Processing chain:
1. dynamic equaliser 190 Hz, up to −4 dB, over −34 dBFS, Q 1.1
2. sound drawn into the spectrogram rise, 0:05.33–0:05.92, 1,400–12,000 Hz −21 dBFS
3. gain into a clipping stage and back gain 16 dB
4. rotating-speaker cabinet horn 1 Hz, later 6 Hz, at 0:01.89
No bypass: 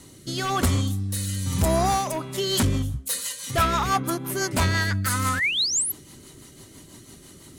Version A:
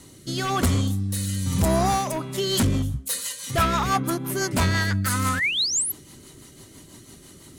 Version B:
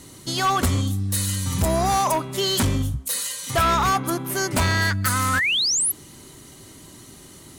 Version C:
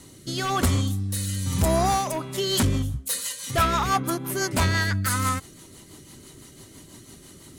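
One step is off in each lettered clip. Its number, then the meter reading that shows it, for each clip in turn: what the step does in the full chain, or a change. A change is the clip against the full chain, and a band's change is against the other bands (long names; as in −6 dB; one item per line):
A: 1, 250 Hz band +2.5 dB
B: 4, change in crest factor −9.0 dB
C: 2, 4 kHz band −2.5 dB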